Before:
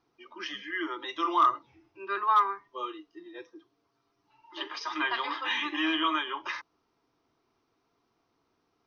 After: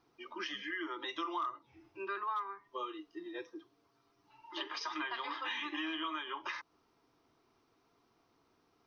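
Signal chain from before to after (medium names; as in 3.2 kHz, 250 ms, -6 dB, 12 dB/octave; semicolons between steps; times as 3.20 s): compression 4:1, threshold -40 dBFS, peak gain reduction 17.5 dB; trim +2 dB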